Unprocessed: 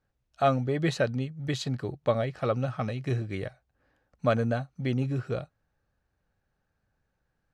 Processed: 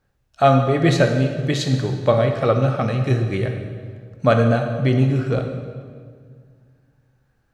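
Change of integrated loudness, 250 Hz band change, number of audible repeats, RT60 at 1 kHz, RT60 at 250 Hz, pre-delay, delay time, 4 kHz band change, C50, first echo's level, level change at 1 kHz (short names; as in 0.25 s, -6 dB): +10.5 dB, +10.5 dB, none, 1.7 s, 2.4 s, 13 ms, none, +10.0 dB, 5.5 dB, none, +10.0 dB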